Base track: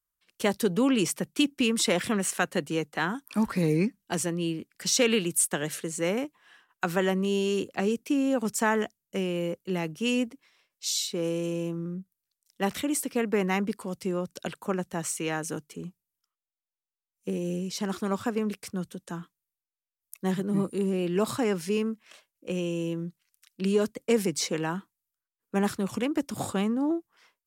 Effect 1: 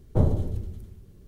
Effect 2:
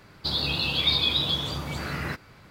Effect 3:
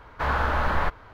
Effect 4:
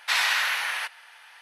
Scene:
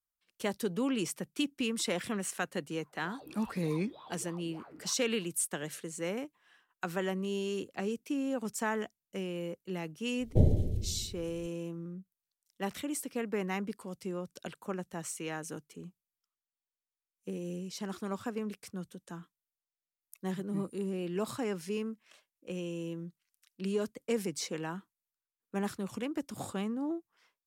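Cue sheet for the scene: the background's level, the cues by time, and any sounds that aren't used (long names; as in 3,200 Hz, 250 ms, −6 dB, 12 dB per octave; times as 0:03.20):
base track −8 dB
0:02.78: mix in 2 −3.5 dB + LFO wah 3.4 Hz 290–1,100 Hz, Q 9.4
0:10.20: mix in 1 −2.5 dB + Butterworth band-reject 1,200 Hz, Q 0.81
not used: 3, 4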